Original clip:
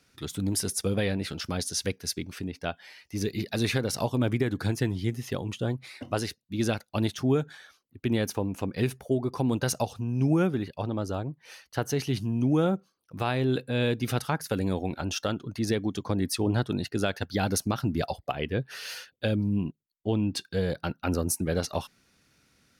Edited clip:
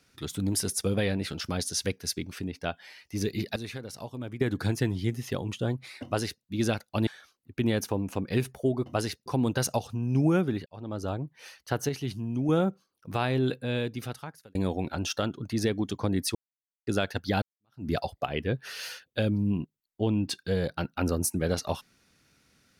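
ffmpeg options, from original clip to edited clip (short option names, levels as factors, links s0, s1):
-filter_complex "[0:a]asplit=13[s0][s1][s2][s3][s4][s5][s6][s7][s8][s9][s10][s11][s12];[s0]atrim=end=3.562[s13];[s1]atrim=start=3.558:end=4.412,asetpts=PTS-STARTPTS,volume=0.266[s14];[s2]atrim=start=4.408:end=7.072[s15];[s3]atrim=start=7.528:end=9.322[s16];[s4]atrim=start=6.038:end=6.442[s17];[s5]atrim=start=9.318:end=10.72,asetpts=PTS-STARTPTS,afade=t=out:st=1.398:d=0.004:c=hsin[s18];[s6]atrim=start=10.72:end=11.952,asetpts=PTS-STARTPTS,afade=t=in:d=0.44[s19];[s7]atrim=start=11.948:end=12.552,asetpts=PTS-STARTPTS,volume=0.596[s20];[s8]atrim=start=12.548:end=14.61,asetpts=PTS-STARTPTS,afade=t=out:st=0.872:d=1.19[s21];[s9]atrim=start=14.61:end=16.41,asetpts=PTS-STARTPTS,afade=t=in:d=0.004:c=hsin,afade=t=out:st=1.796:d=0.004:c=hsin[s22];[s10]atrim=start=16.41:end=16.93,asetpts=PTS-STARTPTS,volume=0[s23];[s11]atrim=start=16.93:end=17.48,asetpts=PTS-STARTPTS,afade=t=in:d=0.004:c=hsin,afade=t=out:st=0.546:d=0.004:c=hsin[s24];[s12]atrim=start=17.48,asetpts=PTS-STARTPTS,afade=t=in:d=0.45:c=exp[s25];[s13][s14]acrossfade=d=0.004:c1=hsin:c2=hsin[s26];[s26][s15]acrossfade=d=0.004:c1=hsin:c2=hsin[s27];[s27][s16]acrossfade=d=0.004:c1=hsin:c2=hsin[s28];[s28][s17]acrossfade=d=0.004:c1=hsin:c2=hsin[s29];[s18][s19]concat=n=2:v=0:a=1[s30];[s29][s30]acrossfade=d=0.004:c1=hsin:c2=hsin[s31];[s31][s20]acrossfade=d=0.004:c1=hsin:c2=hsin[s32];[s21][s22][s23][s24][s25]concat=n=5:v=0:a=1[s33];[s32][s33]acrossfade=d=0.004:c1=hsin:c2=hsin"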